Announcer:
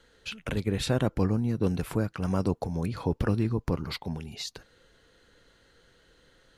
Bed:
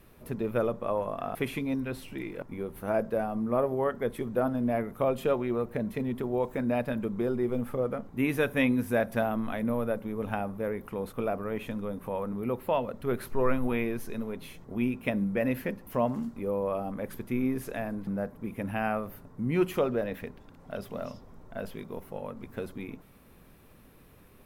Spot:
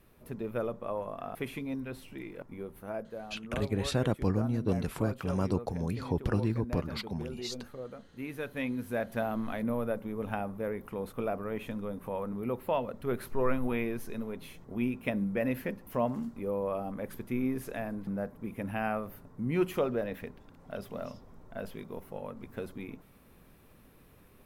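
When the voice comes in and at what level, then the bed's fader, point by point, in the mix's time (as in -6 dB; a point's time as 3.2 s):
3.05 s, -3.0 dB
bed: 2.67 s -5.5 dB
3.13 s -12.5 dB
8.21 s -12.5 dB
9.42 s -2.5 dB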